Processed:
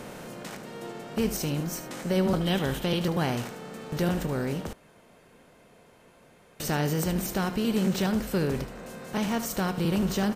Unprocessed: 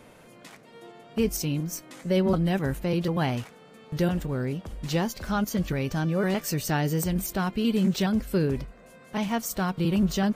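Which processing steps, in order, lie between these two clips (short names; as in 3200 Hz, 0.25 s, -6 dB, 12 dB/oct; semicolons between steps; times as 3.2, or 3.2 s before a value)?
per-bin compression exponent 0.6; 2.41–2.99 bell 3300 Hz +14 dB 0.38 oct; echo 75 ms -12 dB; 4.73–6.6 room tone; gain -4.5 dB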